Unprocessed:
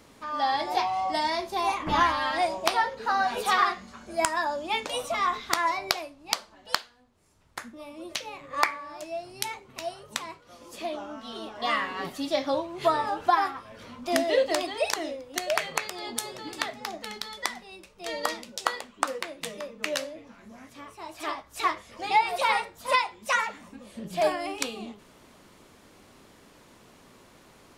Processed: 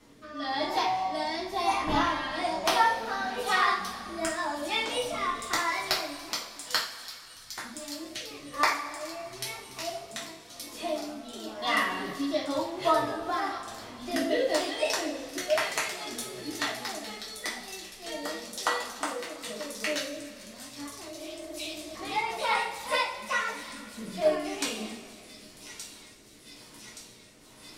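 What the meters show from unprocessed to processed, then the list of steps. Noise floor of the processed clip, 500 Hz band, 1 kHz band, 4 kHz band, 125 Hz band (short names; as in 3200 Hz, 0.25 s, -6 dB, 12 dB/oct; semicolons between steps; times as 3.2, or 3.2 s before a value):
-51 dBFS, -1.5 dB, -3.5 dB, 0.0 dB, 0.0 dB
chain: thin delay 1.173 s, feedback 78%, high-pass 5100 Hz, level -7.5 dB; rotary speaker horn 1 Hz; two-slope reverb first 0.38 s, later 2.8 s, from -18 dB, DRR -6 dB; spectral repair 21.17–21.93, 240–2300 Hz before; gain -5.5 dB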